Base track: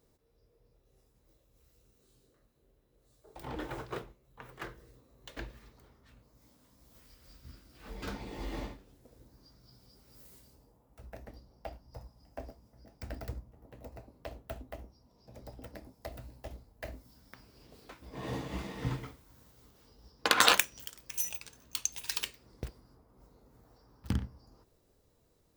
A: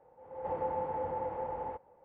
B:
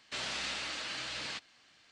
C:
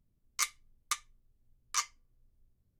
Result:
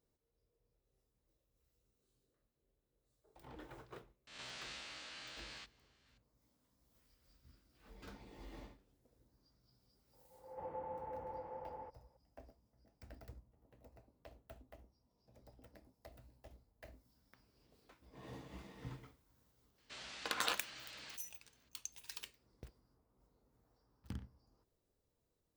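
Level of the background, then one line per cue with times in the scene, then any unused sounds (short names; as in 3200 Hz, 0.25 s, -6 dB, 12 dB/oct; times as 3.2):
base track -14 dB
4.27 add B -14.5 dB + spectral swells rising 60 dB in 0.72 s
10.13 add A -11 dB
19.78 add B -13.5 dB
not used: C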